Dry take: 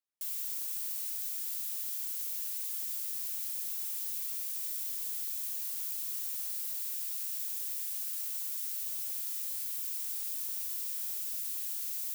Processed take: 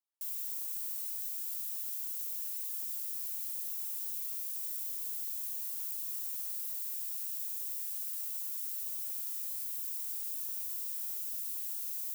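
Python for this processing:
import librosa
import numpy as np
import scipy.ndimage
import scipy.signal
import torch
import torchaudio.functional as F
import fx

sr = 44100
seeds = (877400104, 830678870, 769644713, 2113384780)

y = scipy.signal.sosfilt(scipy.signal.cheby1(6, 9, 220.0, 'highpass', fs=sr, output='sos'), x)
y = fx.high_shelf(y, sr, hz=6000.0, db=8.0)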